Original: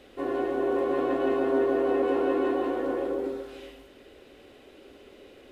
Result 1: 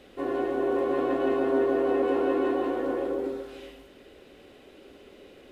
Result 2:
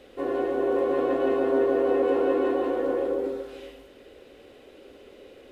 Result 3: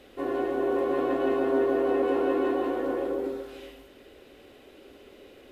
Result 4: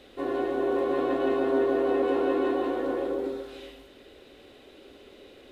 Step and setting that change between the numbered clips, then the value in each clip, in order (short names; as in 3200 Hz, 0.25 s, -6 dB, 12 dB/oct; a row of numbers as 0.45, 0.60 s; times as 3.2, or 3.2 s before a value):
bell, frequency: 180, 500, 13000, 3800 Hz